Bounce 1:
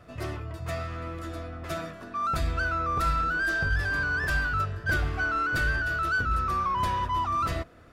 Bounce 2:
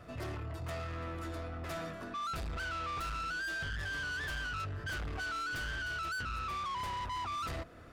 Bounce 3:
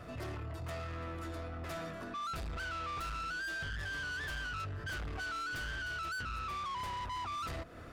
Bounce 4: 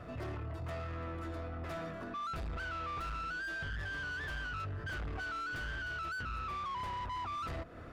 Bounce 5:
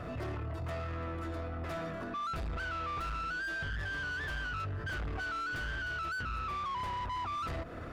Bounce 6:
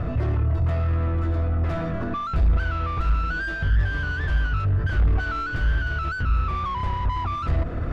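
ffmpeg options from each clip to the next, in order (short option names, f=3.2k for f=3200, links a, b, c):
-filter_complex "[0:a]asplit=2[a][b];[b]acompressor=threshold=-33dB:ratio=6,volume=-1dB[c];[a][c]amix=inputs=2:normalize=0,asoftclip=type=tanh:threshold=-30.5dB,volume=-5.5dB"
-af "alimiter=level_in=17.5dB:limit=-24dB:level=0:latency=1:release=164,volume=-17.5dB,volume=4dB"
-af "highshelf=f=3.9k:g=-11,volume=1dB"
-af "alimiter=level_in=17.5dB:limit=-24dB:level=0:latency=1:release=47,volume=-17.5dB,volume=7.5dB"
-af "aemphasis=mode=reproduction:type=bsi,areverse,acompressor=mode=upward:threshold=-28dB:ratio=2.5,areverse,volume=6.5dB"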